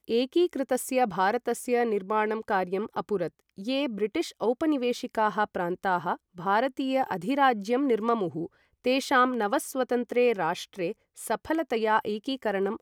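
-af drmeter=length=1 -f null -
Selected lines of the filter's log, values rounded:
Channel 1: DR: 11.0
Overall DR: 11.0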